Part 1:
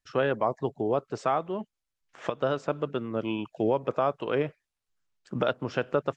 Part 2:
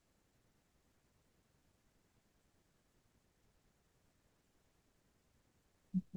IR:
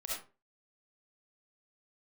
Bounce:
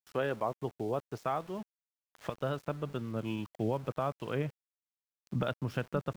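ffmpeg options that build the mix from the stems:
-filter_complex "[0:a]asubboost=boost=4:cutoff=190,volume=-6.5dB[link_01];[1:a]volume=-5dB[link_02];[link_01][link_02]amix=inputs=2:normalize=0,aeval=exprs='val(0)*gte(abs(val(0)),0.00355)':channel_layout=same"

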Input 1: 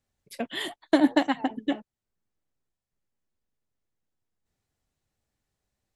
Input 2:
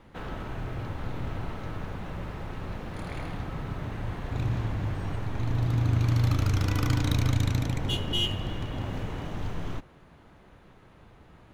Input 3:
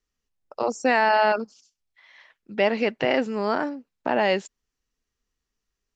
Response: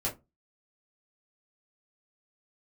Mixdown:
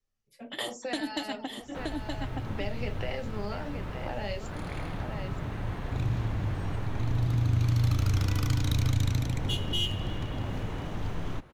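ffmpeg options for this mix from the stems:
-filter_complex "[0:a]volume=0dB,asplit=3[link_01][link_02][link_03];[link_02]volume=-20dB[link_04];[link_03]volume=-7dB[link_05];[1:a]adelay=1600,volume=0dB[link_06];[2:a]volume=-11.5dB,asplit=4[link_07][link_08][link_09][link_10];[link_08]volume=-6dB[link_11];[link_09]volume=-8dB[link_12];[link_10]apad=whole_len=262796[link_13];[link_01][link_13]sidechaingate=range=-33dB:threshold=-57dB:ratio=16:detection=peak[link_14];[3:a]atrim=start_sample=2205[link_15];[link_04][link_11]amix=inputs=2:normalize=0[link_16];[link_16][link_15]afir=irnorm=-1:irlink=0[link_17];[link_05][link_12]amix=inputs=2:normalize=0,aecho=0:1:923:1[link_18];[link_14][link_06][link_07][link_17][link_18]amix=inputs=5:normalize=0,acrossover=split=150|3000[link_19][link_20][link_21];[link_20]acompressor=threshold=-34dB:ratio=6[link_22];[link_19][link_22][link_21]amix=inputs=3:normalize=0"

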